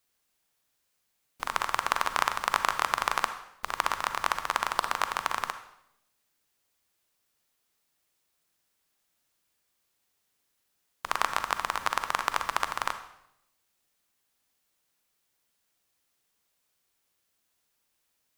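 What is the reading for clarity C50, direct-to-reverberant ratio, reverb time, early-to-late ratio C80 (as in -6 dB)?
10.0 dB, 9.0 dB, 0.80 s, 13.5 dB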